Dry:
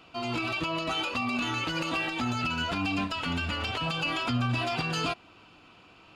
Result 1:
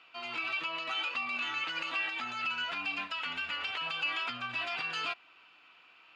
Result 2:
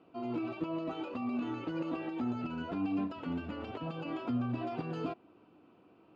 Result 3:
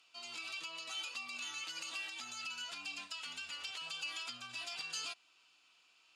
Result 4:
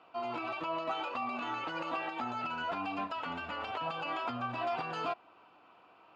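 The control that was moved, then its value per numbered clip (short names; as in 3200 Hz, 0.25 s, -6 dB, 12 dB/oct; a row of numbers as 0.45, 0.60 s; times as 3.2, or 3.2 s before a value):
band-pass, frequency: 2100, 330, 7600, 830 Hz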